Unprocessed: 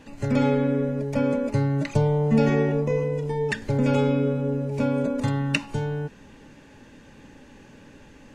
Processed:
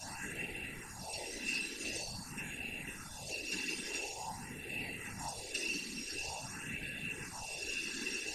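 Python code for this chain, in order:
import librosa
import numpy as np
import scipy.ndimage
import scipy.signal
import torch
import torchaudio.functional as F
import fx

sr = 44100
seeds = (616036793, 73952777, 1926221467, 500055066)

y = fx.bin_compress(x, sr, power=0.2)
y = scipy.signal.lfilter([1.0, -0.9], [1.0], y)
y = fx.stiff_resonator(y, sr, f0_hz=200.0, decay_s=0.66, stiffness=0.008)
y = fx.whisperise(y, sr, seeds[0])
y = fx.phaser_stages(y, sr, stages=4, low_hz=110.0, high_hz=1000.0, hz=0.47, feedback_pct=25)
y = F.gain(torch.from_numpy(y), 11.0).numpy()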